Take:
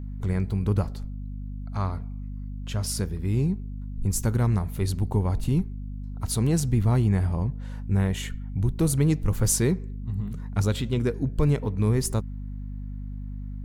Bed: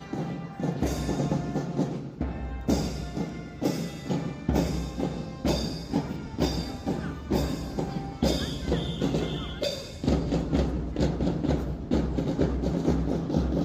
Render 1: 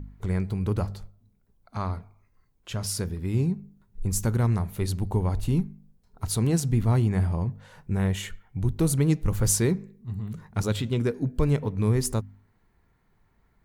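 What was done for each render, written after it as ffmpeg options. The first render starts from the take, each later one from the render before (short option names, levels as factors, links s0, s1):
-af "bandreject=f=50:t=h:w=4,bandreject=f=100:t=h:w=4,bandreject=f=150:t=h:w=4,bandreject=f=200:t=h:w=4,bandreject=f=250:t=h:w=4"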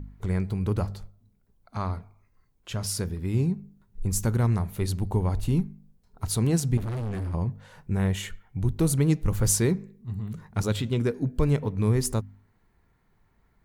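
-filter_complex "[0:a]asettb=1/sr,asplit=3[s0][s1][s2];[s0]atrim=end=6.774[s3];[s1]atrim=start=6.77:end=7.34,asetpts=PTS-STARTPTS,afade=t=in:d=0.004:c=qsin,afade=t=out:st=0.566:d=0.004:c=qsin,asoftclip=type=hard:threshold=0.0376[s4];[s2]atrim=start=7.336[s5];[s3][s4]acrossfade=d=0.004:c1=hsin:c2=qsin[s6];[s6][s5]acrossfade=d=0.004:c1=qsin:c2=hsin"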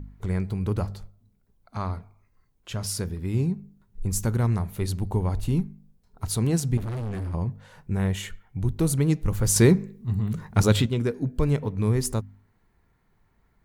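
-filter_complex "[0:a]asplit=3[s0][s1][s2];[s0]atrim=end=9.562[s3];[s1]atrim=start=9.558:end=10.862,asetpts=PTS-STARTPTS,volume=2.24[s4];[s2]atrim=start=10.858[s5];[s3][s4]acrossfade=d=0.004:c1=hsin:c2=hsin[s6];[s6][s5]acrossfade=d=0.004:c1=hsin:c2=hsin"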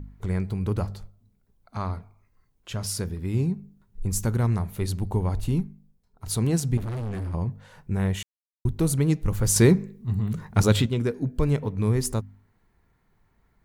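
-filter_complex "[0:a]asplit=4[s0][s1][s2][s3];[s0]atrim=end=6.26,asetpts=PTS-STARTPTS,afade=t=out:st=5.47:d=0.79:silence=0.354813[s4];[s1]atrim=start=6.26:end=8.23,asetpts=PTS-STARTPTS,afade=t=in:d=0.004:c=hsin:silence=0.354813,afade=t=out:st=1.966:d=0.004:c=hsin[s5];[s2]atrim=start=8.23:end=8.65,asetpts=PTS-STARTPTS,volume=0[s6];[s3]atrim=start=8.65,asetpts=PTS-STARTPTS,afade=t=in:d=0.004:c=hsin[s7];[s4][s5][s6][s7]concat=n=4:v=0:a=1"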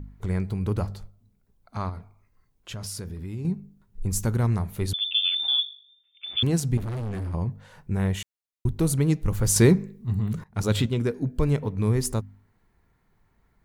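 -filter_complex "[0:a]asettb=1/sr,asplit=3[s0][s1][s2];[s0]atrim=end=1.894[s3];[s1]atrim=start=1.89:end=3.45,asetpts=PTS-STARTPTS,afade=t=in:d=0.004:c=qsin,afade=t=out:st=1.556:d=0.004:c=qsin,acompressor=threshold=0.0251:ratio=3:attack=3.2:release=140:knee=1:detection=peak[s4];[s2]atrim=start=3.446[s5];[s3][s4]acrossfade=d=0.004:c1=hsin:c2=qsin[s6];[s6][s5]acrossfade=d=0.004:c1=qsin:c2=hsin,asettb=1/sr,asplit=3[s7][s8][s9];[s7]atrim=end=4.934[s10];[s8]atrim=start=4.93:end=6.43,asetpts=PTS-STARTPTS,afade=t=in:d=0.004:c=qsin,afade=t=out:st=1.496:d=0.004:c=qsin,lowpass=f=3100:t=q:w=0.5098,lowpass=f=3100:t=q:w=0.6013,lowpass=f=3100:t=q:w=0.9,lowpass=f=3100:t=q:w=2.563,afreqshift=-3600[s11];[s9]atrim=start=6.426[s12];[s10][s11]acrossfade=d=0.004:c1=hsin:c2=qsin[s13];[s13][s12]acrossfade=d=0.004:c1=qsin:c2=hsin,asplit=2[s14][s15];[s14]atrim=end=10.44,asetpts=PTS-STARTPTS,afade=t=out:st=10.436:d=0.004:c=hsin:silence=0.1[s16];[s15]atrim=start=10.44,asetpts=PTS-STARTPTS,afade=t=in:d=0.45:silence=0.1[s17];[s16][s17]concat=n=2:v=0:a=1"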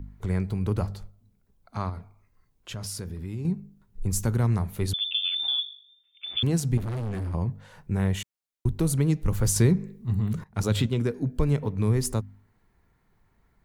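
-filter_complex "[0:a]acrossover=split=180[s0][s1];[s1]acompressor=threshold=0.0631:ratio=4[s2];[s0][s2]amix=inputs=2:normalize=0"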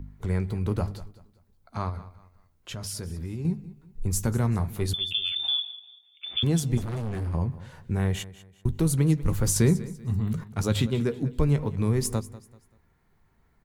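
-filter_complex "[0:a]asplit=2[s0][s1];[s1]adelay=13,volume=0.251[s2];[s0][s2]amix=inputs=2:normalize=0,aecho=1:1:193|386|579:0.133|0.044|0.0145"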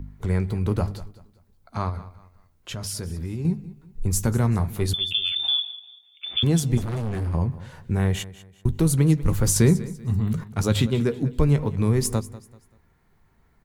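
-af "volume=1.5"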